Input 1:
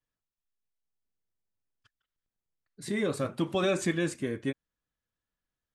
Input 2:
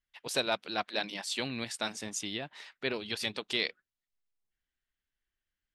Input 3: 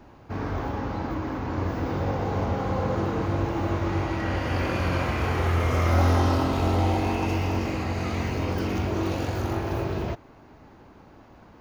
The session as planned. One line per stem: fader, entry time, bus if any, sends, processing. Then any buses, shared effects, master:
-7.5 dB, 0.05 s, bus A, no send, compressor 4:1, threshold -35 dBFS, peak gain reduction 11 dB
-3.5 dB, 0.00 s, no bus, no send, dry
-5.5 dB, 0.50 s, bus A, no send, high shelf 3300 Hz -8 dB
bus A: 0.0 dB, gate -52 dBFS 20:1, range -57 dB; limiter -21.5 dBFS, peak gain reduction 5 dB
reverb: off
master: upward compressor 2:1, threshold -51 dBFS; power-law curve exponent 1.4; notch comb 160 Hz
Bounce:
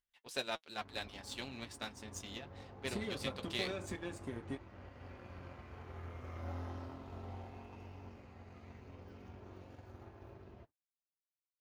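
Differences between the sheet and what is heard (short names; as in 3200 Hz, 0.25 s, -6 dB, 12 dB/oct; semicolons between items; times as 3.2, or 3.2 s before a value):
stem 1 -7.5 dB -> +1.0 dB; stem 3 -5.5 dB -> -16.0 dB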